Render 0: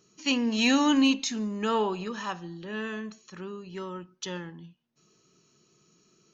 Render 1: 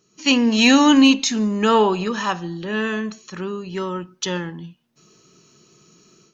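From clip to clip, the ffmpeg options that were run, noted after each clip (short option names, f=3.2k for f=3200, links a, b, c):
-af "dynaudnorm=f=120:g=3:m=11dB"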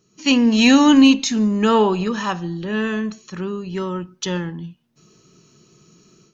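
-af "lowshelf=f=230:g=8,volume=-1.5dB"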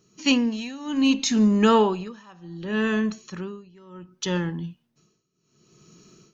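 -af "tremolo=f=0.66:d=0.95"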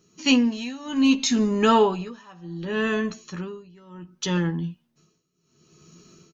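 -filter_complex "[0:a]asplit=2[a][b];[b]adelay=12,volume=-6dB[c];[a][c]amix=inputs=2:normalize=0"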